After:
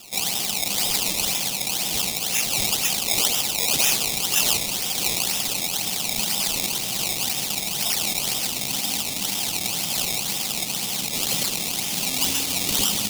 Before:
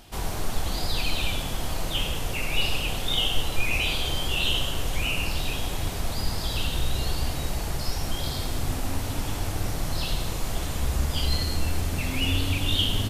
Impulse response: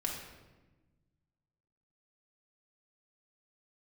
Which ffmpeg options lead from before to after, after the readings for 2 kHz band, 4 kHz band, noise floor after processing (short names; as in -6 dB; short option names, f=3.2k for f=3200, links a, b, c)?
+2.5 dB, +5.0 dB, -28 dBFS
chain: -af "highpass=f=140:w=0.5412,highpass=f=140:w=1.3066,equalizer=f=200:t=q:w=4:g=9,equalizer=f=800:t=q:w=4:g=10,equalizer=f=3k:t=q:w=4:g=-4,equalizer=f=5.4k:t=q:w=4:g=8,lowpass=f=7k:w=0.5412,lowpass=f=7k:w=1.3066,acrusher=samples=20:mix=1:aa=0.000001:lfo=1:lforange=20:lforate=2,aexciter=amount=10.5:drive=3.7:freq=2.4k,volume=-5dB"